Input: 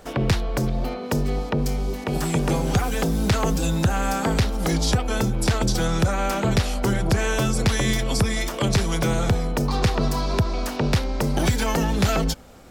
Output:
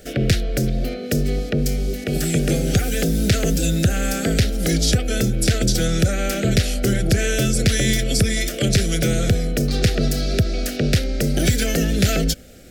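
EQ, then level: Butterworth band-stop 980 Hz, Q 1.1; treble shelf 5.9 kHz +5 dB; +3.0 dB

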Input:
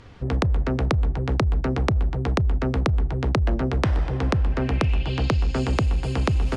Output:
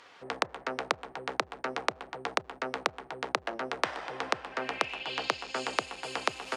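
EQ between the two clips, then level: high-pass 710 Hz 12 dB/octave; 0.0 dB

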